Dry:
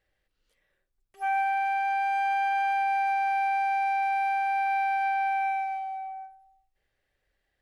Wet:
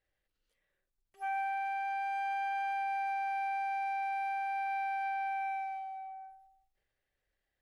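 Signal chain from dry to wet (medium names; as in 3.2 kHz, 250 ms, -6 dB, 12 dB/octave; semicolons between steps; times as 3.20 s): transient shaper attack +1 dB, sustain +6 dB; trim -8.5 dB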